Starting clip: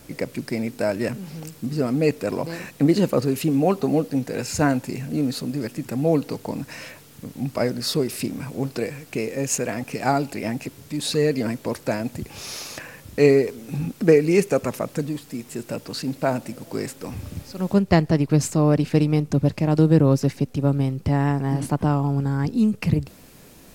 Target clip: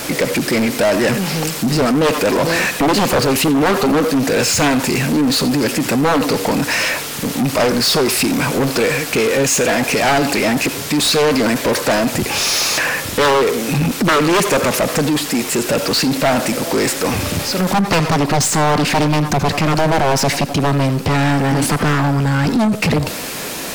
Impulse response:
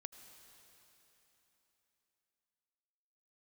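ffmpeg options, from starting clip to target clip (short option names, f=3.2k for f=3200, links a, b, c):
-filter_complex "[0:a]aeval=exprs='0.794*sin(PI/2*5.01*val(0)/0.794)':c=same[a];[1:a]atrim=start_sample=2205,atrim=end_sample=4410[b];[a][b]afir=irnorm=-1:irlink=0,alimiter=limit=-9.5dB:level=0:latency=1,asplit=2[c][d];[d]highpass=f=720:p=1,volume=22dB,asoftclip=type=tanh:threshold=-9.5dB[e];[c][e]amix=inputs=2:normalize=0,lowpass=f=7.5k:p=1,volume=-6dB"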